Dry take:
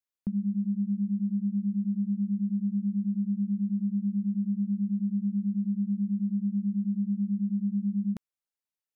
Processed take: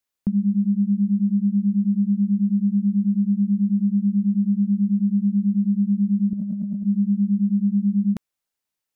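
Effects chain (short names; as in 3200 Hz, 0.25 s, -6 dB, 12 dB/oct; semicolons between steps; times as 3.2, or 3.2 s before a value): 6.33–6.83 negative-ratio compressor -35 dBFS, ratio -1; gain +8.5 dB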